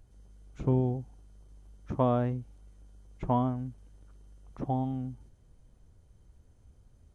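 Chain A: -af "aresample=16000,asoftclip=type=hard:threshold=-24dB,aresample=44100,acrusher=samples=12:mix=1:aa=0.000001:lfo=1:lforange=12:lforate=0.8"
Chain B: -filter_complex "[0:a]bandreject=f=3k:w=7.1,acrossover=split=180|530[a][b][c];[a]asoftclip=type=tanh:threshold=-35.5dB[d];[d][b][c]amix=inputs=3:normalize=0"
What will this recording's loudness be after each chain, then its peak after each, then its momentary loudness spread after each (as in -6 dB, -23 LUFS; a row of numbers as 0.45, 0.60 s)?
-33.0, -33.0 LUFS; -23.5, -14.0 dBFS; 13, 15 LU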